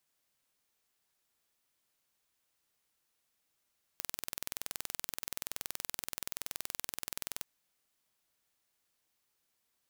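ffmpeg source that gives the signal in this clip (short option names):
-f lavfi -i "aevalsrc='0.335*eq(mod(n,2090),0)':d=3.45:s=44100"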